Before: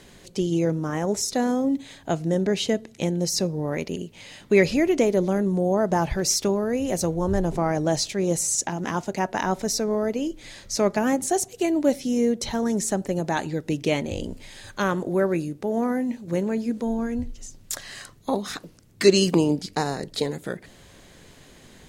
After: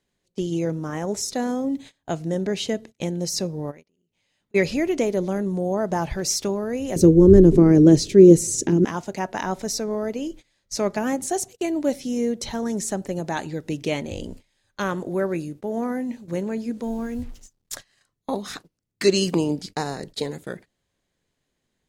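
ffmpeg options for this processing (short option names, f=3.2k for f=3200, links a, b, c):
-filter_complex "[0:a]asplit=3[a][b][c];[a]afade=t=out:st=3.7:d=0.02[d];[b]acompressor=threshold=-40dB:ratio=12:attack=3.2:release=140:knee=1:detection=peak,afade=t=in:st=3.7:d=0.02,afade=t=out:st=4.54:d=0.02[e];[c]afade=t=in:st=4.54:d=0.02[f];[d][e][f]amix=inputs=3:normalize=0,asettb=1/sr,asplit=3[g][h][i];[g]atrim=end=6.964[j];[h]atrim=start=6.96:end=8.85,asetpts=PTS-STARTPTS,afade=t=in:d=0.004:c=qsin,afade=t=out:st=1.886:d=0.004:c=qsin,lowshelf=f=530:t=q:w=3:g=11.5[k];[i]atrim=start=8.846[l];[j][k]acrossfade=d=0.004:c1=hsin:c2=qsin[m];[m][l]acrossfade=d=0.004:c1=qsin:c2=hsin,asettb=1/sr,asplit=3[n][o][p];[n]atrim=end=16.834[q];[o]atrim=start=16.83:end=17.73,asetpts=PTS-STARTPTS,afade=t=in:d=0.004:c=qsin,afade=t=out:st=0.896:d=0.004:c=qsin,acrusher=bits=7:mix=0:aa=0.5[r];[p]atrim=start=17.726[s];[q][r]acrossfade=d=0.004:c1=hsin:c2=qsin[t];[t][s]acrossfade=d=0.004:c1=qsin:c2=hsin,aemphasis=mode=reproduction:type=cd,agate=range=-25dB:threshold=-37dB:ratio=16:detection=peak,highshelf=f=4.5k:g=10,volume=-2.5dB"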